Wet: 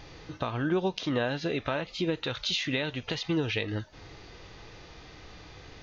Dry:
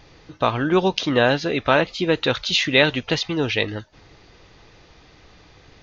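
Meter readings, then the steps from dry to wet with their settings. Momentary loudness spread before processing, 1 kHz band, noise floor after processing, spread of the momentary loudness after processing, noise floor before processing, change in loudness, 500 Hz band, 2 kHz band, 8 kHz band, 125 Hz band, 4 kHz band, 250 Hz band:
7 LU, −13.0 dB, −51 dBFS, 20 LU, −51 dBFS, −10.5 dB, −11.0 dB, −12.5 dB, can't be measured, −6.5 dB, −10.0 dB, −8.0 dB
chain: downward compressor 12 to 1, threshold −27 dBFS, peak gain reduction 17 dB
harmonic and percussive parts rebalanced harmonic +7 dB
level −3 dB

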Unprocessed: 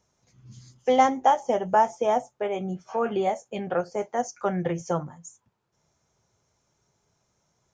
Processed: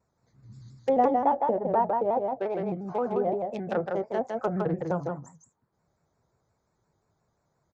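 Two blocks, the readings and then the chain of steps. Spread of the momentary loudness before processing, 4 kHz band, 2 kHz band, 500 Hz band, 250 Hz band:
10 LU, below −10 dB, −7.0 dB, −1.0 dB, −0.5 dB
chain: adaptive Wiener filter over 15 samples
high-shelf EQ 3,300 Hz +11.5 dB
treble cut that deepens with the level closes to 790 Hz, closed at −21 dBFS
single-tap delay 159 ms −3.5 dB
pitch modulation by a square or saw wave square 5.7 Hz, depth 100 cents
level −2 dB

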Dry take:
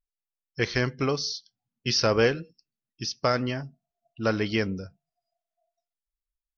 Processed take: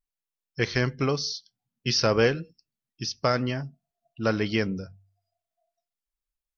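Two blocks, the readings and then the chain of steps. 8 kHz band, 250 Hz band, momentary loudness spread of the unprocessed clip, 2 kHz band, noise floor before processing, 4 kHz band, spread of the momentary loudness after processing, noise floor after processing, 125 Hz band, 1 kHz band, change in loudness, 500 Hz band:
can't be measured, +1.0 dB, 14 LU, 0.0 dB, below −85 dBFS, 0.0 dB, 15 LU, below −85 dBFS, +2.0 dB, 0.0 dB, +0.5 dB, 0.0 dB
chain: parametric band 150 Hz +3 dB 0.77 octaves
hum removal 48.62 Hz, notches 2

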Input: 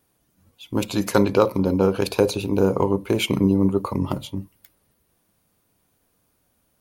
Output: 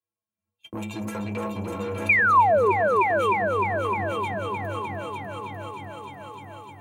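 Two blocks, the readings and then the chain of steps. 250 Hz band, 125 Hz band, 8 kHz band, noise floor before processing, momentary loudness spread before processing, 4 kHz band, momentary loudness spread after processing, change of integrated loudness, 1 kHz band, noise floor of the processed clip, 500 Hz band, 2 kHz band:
−11.5 dB, −7.0 dB, below −10 dB, −68 dBFS, 9 LU, −10.5 dB, 21 LU, −2.0 dB, +8.5 dB, below −85 dBFS, −3.0 dB, +11.0 dB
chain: high-shelf EQ 9,100 Hz −4.5 dB
stiff-string resonator 99 Hz, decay 0.45 s, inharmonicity 0.03
brickwall limiter −26.5 dBFS, peak gain reduction 9.5 dB
soft clipping −34.5 dBFS, distortion −12 dB
high-pass filter 58 Hz
echo machine with several playback heads 299 ms, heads all three, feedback 52%, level −11 dB
sound drawn into the spectrogram fall, 0:02.09–0:02.72, 360–2,500 Hz −22 dBFS
thirty-one-band graphic EQ 630 Hz +4 dB, 1,000 Hz +9 dB, 2,500 Hz +8 dB, 5,000 Hz −11 dB, 8,000 Hz +5 dB
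on a send: echo whose low-pass opens from repeat to repeat 306 ms, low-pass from 750 Hz, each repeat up 1 octave, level −3 dB
on the sum: noise gate −53 dBFS, range −31 dB
multiband upward and downward compressor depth 40%
level +2 dB

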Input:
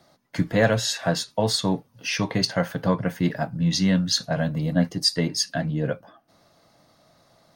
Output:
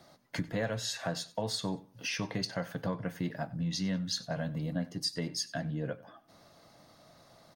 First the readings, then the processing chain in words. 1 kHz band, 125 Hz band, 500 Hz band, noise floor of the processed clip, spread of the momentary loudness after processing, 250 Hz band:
−11.5 dB, −11.0 dB, −12.0 dB, −62 dBFS, 5 LU, −11.5 dB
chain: downward compressor 2.5 to 1, threshold −37 dBFS, peak gain reduction 15.5 dB
on a send: repeating echo 94 ms, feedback 28%, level −20 dB

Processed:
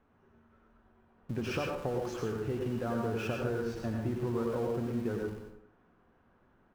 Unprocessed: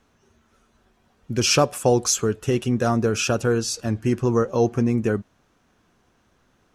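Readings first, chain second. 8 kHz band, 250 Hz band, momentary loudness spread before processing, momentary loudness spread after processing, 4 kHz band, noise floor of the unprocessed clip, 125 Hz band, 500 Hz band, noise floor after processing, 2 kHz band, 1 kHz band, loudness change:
−29.0 dB, −11.5 dB, 6 LU, 5 LU, −21.0 dB, −64 dBFS, −12.0 dB, −12.0 dB, −68 dBFS, −12.0 dB, −13.0 dB, −13.0 dB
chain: low-pass filter 1,700 Hz 12 dB per octave
on a send: repeating echo 101 ms, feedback 50%, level −20 dB
on the sum: downward compressor 5 to 1, threshold −29 dBFS, peak gain reduction 14.5 dB
in parallel at −9.5 dB: comparator with hysteresis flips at −43 dBFS
on the sum: mains-hum notches 50/100/150/200 Hz
dense smooth reverb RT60 0.52 s, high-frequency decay 0.75×, pre-delay 80 ms, DRR 1 dB
level −5 dB

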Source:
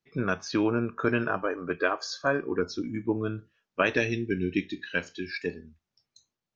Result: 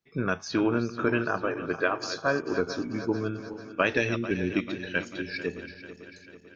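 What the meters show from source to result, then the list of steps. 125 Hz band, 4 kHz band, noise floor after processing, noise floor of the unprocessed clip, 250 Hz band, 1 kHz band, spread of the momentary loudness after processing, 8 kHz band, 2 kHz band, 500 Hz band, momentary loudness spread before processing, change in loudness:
0.0 dB, +0.5 dB, −51 dBFS, below −85 dBFS, +0.5 dB, +0.5 dB, 12 LU, can't be measured, +0.5 dB, +0.5 dB, 8 LU, +0.5 dB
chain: feedback delay that plays each chunk backwards 221 ms, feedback 73%, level −12 dB

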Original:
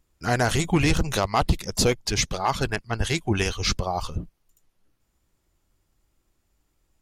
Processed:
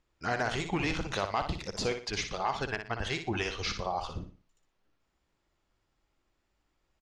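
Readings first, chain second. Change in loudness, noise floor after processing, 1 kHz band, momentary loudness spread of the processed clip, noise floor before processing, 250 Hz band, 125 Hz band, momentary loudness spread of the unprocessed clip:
−8.5 dB, −78 dBFS, −6.5 dB, 5 LU, −73 dBFS, −10.0 dB, −12.5 dB, 6 LU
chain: low-shelf EQ 310 Hz −10 dB
downward compressor 2 to 1, threshold −31 dBFS, peak gain reduction 7.5 dB
high-frequency loss of the air 130 metres
repeating echo 60 ms, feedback 32%, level −8 dB

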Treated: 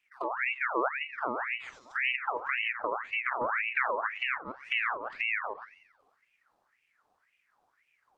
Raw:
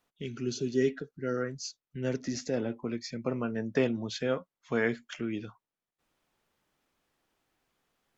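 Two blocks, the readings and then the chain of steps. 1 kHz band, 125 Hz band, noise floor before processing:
+13.0 dB, below −20 dB, below −85 dBFS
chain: delay that plays each chunk backwards 113 ms, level −11 dB
parametric band 1,400 Hz −14.5 dB 1.4 octaves
on a send: feedback echo with a high-pass in the loop 89 ms, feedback 71%, high-pass 170 Hz, level −19 dB
on the sum: downward compressor 2 to 1, threshold −37 dBFS, peak gain reduction 8 dB
spectral tilt −2 dB per octave
mains-hum notches 50/100/150/200/250/300/350 Hz
echo ahead of the sound 95 ms −22 dB
in parallel at −5 dB: decimation without filtering 12×
on the sum: treble cut that deepens with the level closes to 590 Hz, closed at −29 dBFS
ring modulator whose carrier an LFO sweeps 1,600 Hz, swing 55%, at 1.9 Hz
level +2.5 dB

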